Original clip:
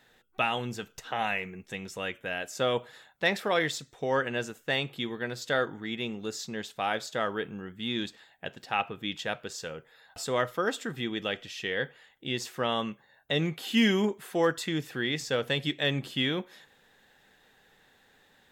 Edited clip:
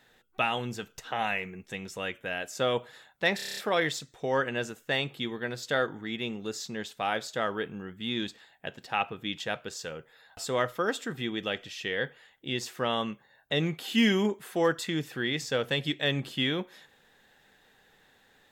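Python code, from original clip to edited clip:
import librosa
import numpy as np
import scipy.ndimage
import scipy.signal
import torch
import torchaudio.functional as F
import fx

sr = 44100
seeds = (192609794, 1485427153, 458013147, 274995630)

y = fx.edit(x, sr, fx.stutter(start_s=3.36, slice_s=0.03, count=8), tone=tone)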